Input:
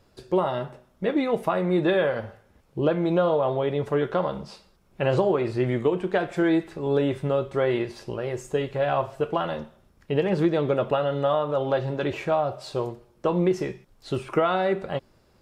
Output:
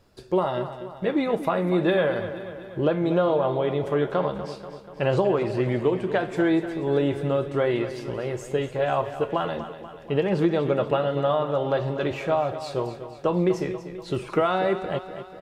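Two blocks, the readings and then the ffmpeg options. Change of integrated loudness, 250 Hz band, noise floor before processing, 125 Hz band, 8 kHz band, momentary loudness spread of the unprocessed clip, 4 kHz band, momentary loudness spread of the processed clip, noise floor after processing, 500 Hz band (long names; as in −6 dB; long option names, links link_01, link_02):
0.0 dB, +0.5 dB, −61 dBFS, +0.5 dB, can't be measured, 10 LU, +0.5 dB, 9 LU, −43 dBFS, +0.5 dB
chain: -af "aecho=1:1:242|484|726|968|1210|1452:0.251|0.146|0.0845|0.049|0.0284|0.0165"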